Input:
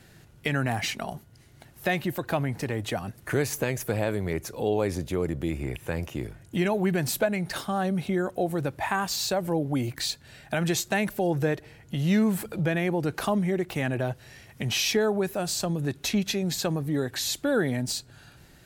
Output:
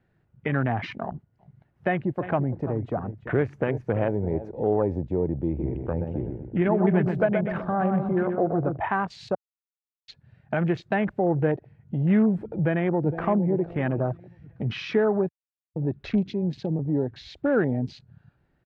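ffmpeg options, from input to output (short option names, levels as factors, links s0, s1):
-filter_complex "[0:a]asettb=1/sr,asplit=3[s0][s1][s2];[s0]atrim=end=1.054[s3];[s1]atrim=start=1.05:end=4.51,asetpts=PTS-STARTPTS,afade=t=in:d=0.004:c=qsin,afade=t=out:st=3.456:d=0.004:c=qsin,aecho=1:1:339:0.237,atrim=end_sample=152586[s4];[s2]atrim=start=4.506[s5];[s3][s4]acrossfade=d=0.004:c1=hsin:c2=qsin[s6];[s6][s5]acrossfade=d=0.004:c1=qsin:c2=hsin,asplit=3[s7][s8][s9];[s7]afade=t=out:st=5.58:d=0.02[s10];[s8]asplit=2[s11][s12];[s12]adelay=125,lowpass=f=3200:p=1,volume=0.562,asplit=2[s13][s14];[s14]adelay=125,lowpass=f=3200:p=1,volume=0.51,asplit=2[s15][s16];[s16]adelay=125,lowpass=f=3200:p=1,volume=0.51,asplit=2[s17][s18];[s18]adelay=125,lowpass=f=3200:p=1,volume=0.51,asplit=2[s19][s20];[s20]adelay=125,lowpass=f=3200:p=1,volume=0.51,asplit=2[s21][s22];[s22]adelay=125,lowpass=f=3200:p=1,volume=0.51[s23];[s11][s13][s15][s17][s19][s21][s23]amix=inputs=7:normalize=0,afade=t=in:st=5.58:d=0.02,afade=t=out:st=8.76:d=0.02[s24];[s9]afade=t=in:st=8.76:d=0.02[s25];[s10][s24][s25]amix=inputs=3:normalize=0,asplit=2[s26][s27];[s27]afade=t=in:st=12.57:d=0.01,afade=t=out:st=13.25:d=0.01,aecho=0:1:460|920|1380|1840|2300:0.316228|0.158114|0.0790569|0.0395285|0.0197642[s28];[s26][s28]amix=inputs=2:normalize=0,asettb=1/sr,asplit=3[s29][s30][s31];[s29]atrim=end=16.284[s32];[s30]atrim=start=16.28:end=16.79,asetpts=PTS-STARTPTS,afade=t=in:d=0.004:c=qsin,afade=t=out:st=0.506:d=0.004:c=qsin,acrossover=split=450|3000[s33][s34][s35];[s34]acompressor=threshold=0.00794:ratio=4:attack=3.2:release=140:knee=2.83:detection=peak[s36];[s33][s36][s35]amix=inputs=3:normalize=0[s37];[s31]atrim=start=16.786[s38];[s32][s37]acrossfade=d=0.004:c1=hsin:c2=qsin[s39];[s39][s38]acrossfade=d=0.004:c1=qsin:c2=hsin,asplit=5[s40][s41][s42][s43][s44];[s40]atrim=end=9.35,asetpts=PTS-STARTPTS,afade=t=out:st=9.346:d=0.004:c=hsin[s45];[s41]atrim=start=9.35:end=10.08,asetpts=PTS-STARTPTS,volume=0[s46];[s42]atrim=start=10.08:end=15.29,asetpts=PTS-STARTPTS,afade=t=in:d=0.004:c=hsin,afade=t=out:st=5.206:d=0.004:c=hsin[s47];[s43]atrim=start=15.29:end=15.76,asetpts=PTS-STARTPTS,volume=0[s48];[s44]atrim=start=15.76,asetpts=PTS-STARTPTS,afade=t=in:d=0.004:c=hsin[s49];[s45][s46][s47][s48][s49]concat=n=5:v=0:a=1,afwtdn=0.02,lowpass=1700,volume=1.33"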